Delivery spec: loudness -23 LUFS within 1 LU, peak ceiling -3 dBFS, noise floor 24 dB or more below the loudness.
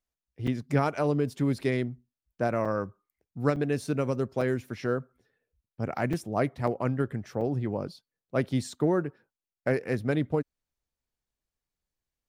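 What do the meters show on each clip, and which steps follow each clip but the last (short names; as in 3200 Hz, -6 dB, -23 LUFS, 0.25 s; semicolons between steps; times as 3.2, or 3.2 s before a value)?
dropouts 7; longest dropout 4.8 ms; loudness -29.5 LUFS; peak -12.0 dBFS; loudness target -23.0 LUFS
-> interpolate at 0.47/2.65/3.56/4.41/6.13/6.67/7.41, 4.8 ms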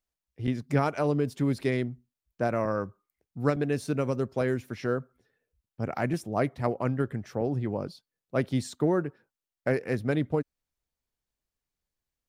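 dropouts 0; loudness -29.5 LUFS; peak -12.0 dBFS; loudness target -23.0 LUFS
-> gain +6.5 dB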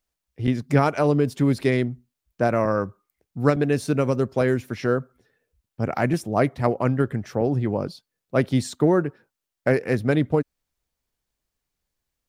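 loudness -23.0 LUFS; peak -5.5 dBFS; noise floor -85 dBFS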